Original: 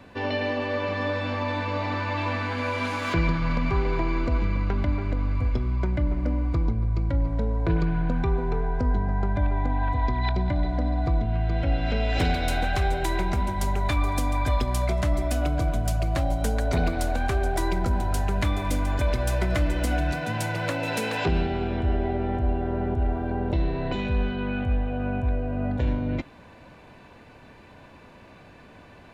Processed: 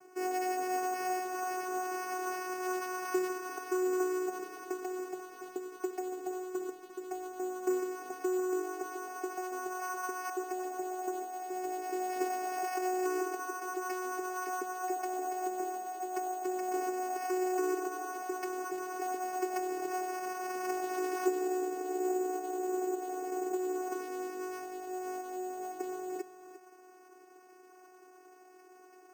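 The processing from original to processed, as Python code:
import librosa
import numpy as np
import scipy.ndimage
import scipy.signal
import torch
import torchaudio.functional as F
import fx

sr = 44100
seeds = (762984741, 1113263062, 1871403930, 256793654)

p1 = scipy.signal.sosfilt(scipy.signal.butter(4, 2000.0, 'lowpass', fs=sr, output='sos'), x)
p2 = fx.mod_noise(p1, sr, seeds[0], snr_db=24)
p3 = fx.vocoder(p2, sr, bands=8, carrier='saw', carrier_hz=368.0)
p4 = p3 + fx.echo_single(p3, sr, ms=349, db=-13.0, dry=0)
p5 = np.repeat(p4[::6], 6)[:len(p4)]
y = p5 * librosa.db_to_amplitude(-5.5)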